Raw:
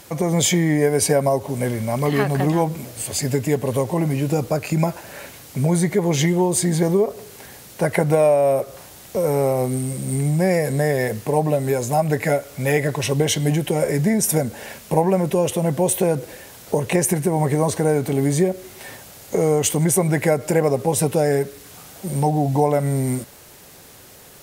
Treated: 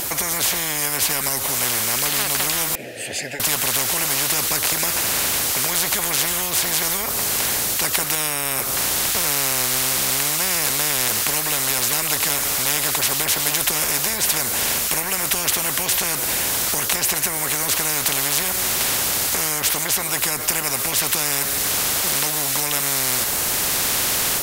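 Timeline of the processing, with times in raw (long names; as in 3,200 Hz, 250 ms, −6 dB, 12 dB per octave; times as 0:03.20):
0:02.75–0:03.40: formant filter e
whole clip: high-shelf EQ 9,300 Hz +9 dB; automatic gain control; every bin compressed towards the loudest bin 10 to 1; level −1 dB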